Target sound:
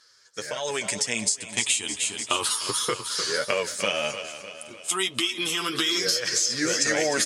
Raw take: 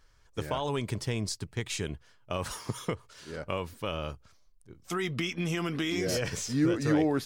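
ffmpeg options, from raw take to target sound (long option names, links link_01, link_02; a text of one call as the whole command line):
ffmpeg -i in.wav -filter_complex "[0:a]afftfilt=real='re*pow(10,9/40*sin(2*PI*(0.59*log(max(b,1)*sr/1024/100)/log(2)-(0.33)*(pts-256)/sr)))':imag='im*pow(10,9/40*sin(2*PI*(0.59*log(max(b,1)*sr/1024/100)/log(2)-(0.33)*(pts-256)/sr)))':win_size=1024:overlap=0.75,asplit=2[link_01][link_02];[link_02]aecho=0:1:302|604|906|1208|1510|1812:0.224|0.121|0.0653|0.0353|0.019|0.0103[link_03];[link_01][link_03]amix=inputs=2:normalize=0,crystalizer=i=10:c=0,acompressor=threshold=-25dB:ratio=20,highpass=230,bandreject=frequency=5800:width=18,dynaudnorm=framelen=220:gausssize=7:maxgain=12dB,flanger=delay=8.3:depth=2.2:regen=16:speed=1.7:shape=sinusoidal,lowpass=frequency=9600:width=0.5412,lowpass=frequency=9600:width=1.3066" out.wav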